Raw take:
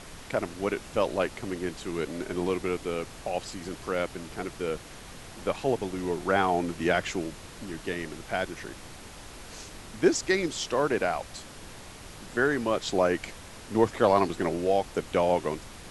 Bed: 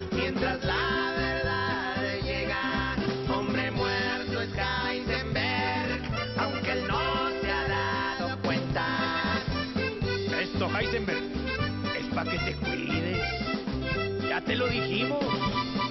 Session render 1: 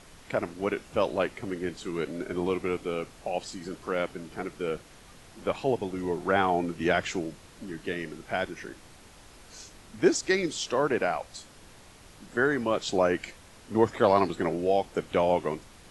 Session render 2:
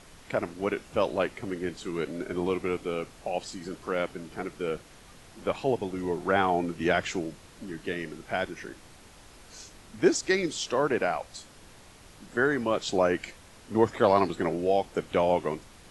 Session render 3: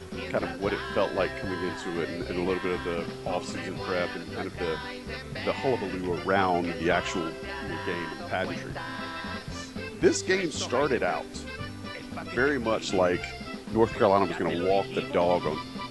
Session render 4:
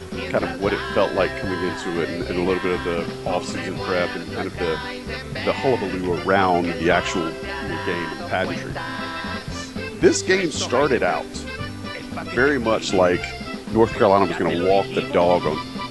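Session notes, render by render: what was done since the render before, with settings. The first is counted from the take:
noise reduction from a noise print 7 dB
no processing that can be heard
mix in bed −7.5 dB
level +7 dB; brickwall limiter −3 dBFS, peak gain reduction 2 dB

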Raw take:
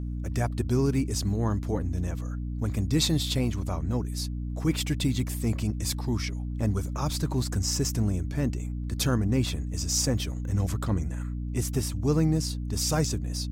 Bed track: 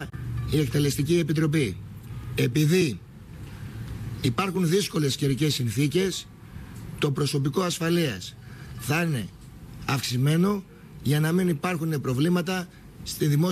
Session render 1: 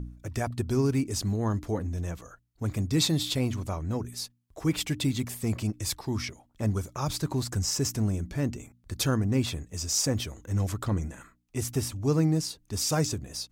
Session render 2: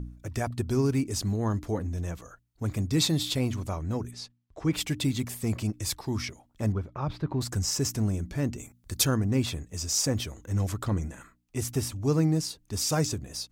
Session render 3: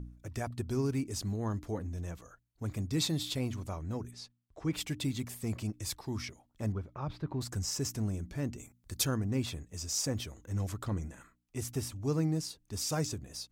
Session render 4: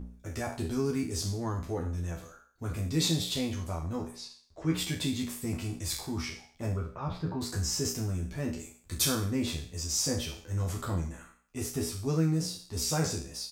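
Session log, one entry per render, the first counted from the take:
hum removal 60 Hz, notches 5
0:04.11–0:04.73: high-frequency loss of the air 96 metres; 0:06.72–0:07.41: high-frequency loss of the air 380 metres; 0:08.58–0:09.05: high-shelf EQ 4,600 Hz +8.5 dB
level −6.5 dB
peak hold with a decay on every bin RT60 0.50 s; double-tracking delay 12 ms −3 dB

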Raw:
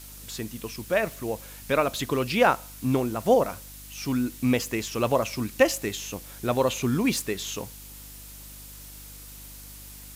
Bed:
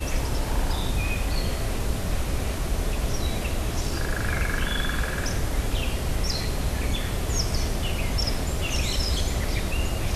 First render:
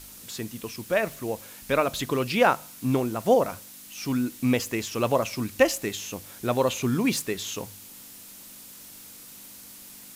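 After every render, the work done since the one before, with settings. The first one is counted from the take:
hum removal 50 Hz, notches 3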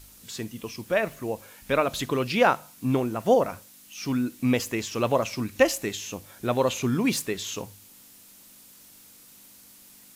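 noise reduction from a noise print 6 dB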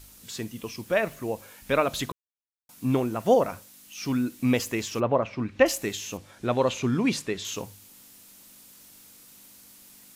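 0:02.12–0:02.69: silence
0:04.99–0:05.65: low-pass filter 1,400 Hz → 3,300 Hz
0:06.17–0:07.45: high-frequency loss of the air 56 metres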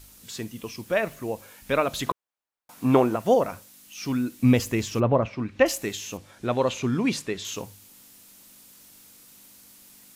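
0:02.06–0:03.16: parametric band 870 Hz +11.5 dB 2.7 octaves
0:04.43–0:05.28: low-shelf EQ 210 Hz +11 dB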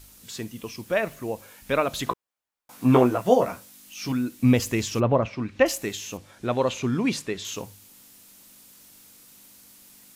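0:02.10–0:04.12: double-tracking delay 16 ms −3.5 dB
0:04.62–0:05.59: parametric band 6,100 Hz +3.5 dB 2.5 octaves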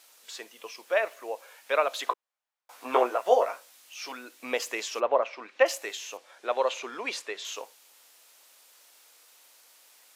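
high-pass filter 500 Hz 24 dB per octave
high-shelf EQ 7,000 Hz −10 dB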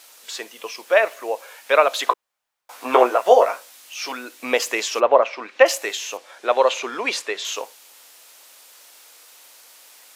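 level +9.5 dB
brickwall limiter −1 dBFS, peak gain reduction 3 dB

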